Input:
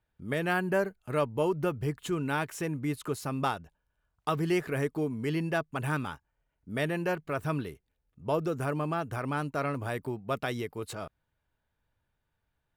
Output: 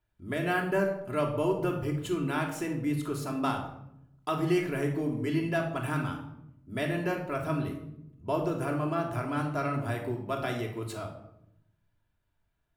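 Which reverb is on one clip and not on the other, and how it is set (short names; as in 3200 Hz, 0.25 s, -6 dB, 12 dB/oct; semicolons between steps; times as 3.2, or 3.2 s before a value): shoebox room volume 2100 m³, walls furnished, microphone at 3 m; gain -3 dB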